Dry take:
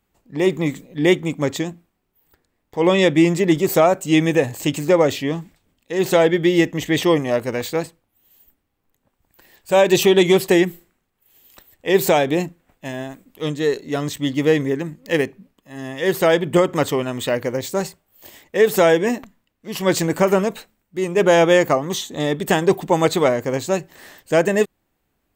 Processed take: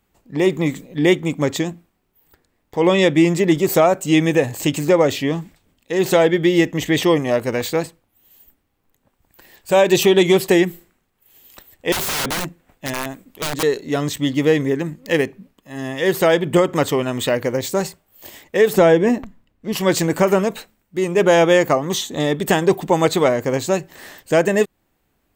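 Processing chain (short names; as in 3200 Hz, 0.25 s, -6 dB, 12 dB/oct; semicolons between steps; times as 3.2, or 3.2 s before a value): 18.73–19.73 tilt -2 dB/oct; in parallel at -1.5 dB: compressor, threshold -22 dBFS, peak gain reduction 13 dB; 11.92–13.63 on the sum: wrapped overs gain 16 dB; gain -1.5 dB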